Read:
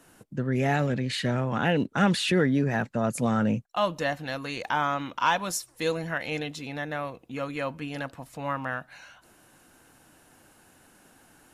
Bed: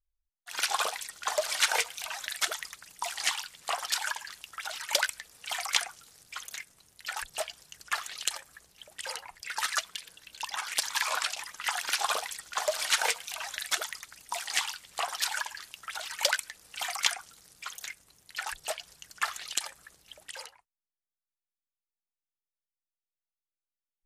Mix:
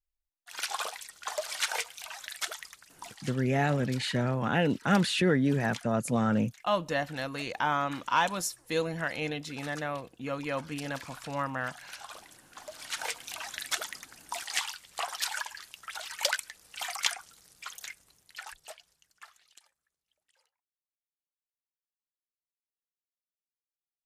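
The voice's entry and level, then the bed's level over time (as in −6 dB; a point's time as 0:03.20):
2.90 s, −2.0 dB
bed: 0:02.81 −5 dB
0:03.28 −16.5 dB
0:12.65 −16.5 dB
0:13.29 −2 dB
0:18.08 −2 dB
0:19.80 −30 dB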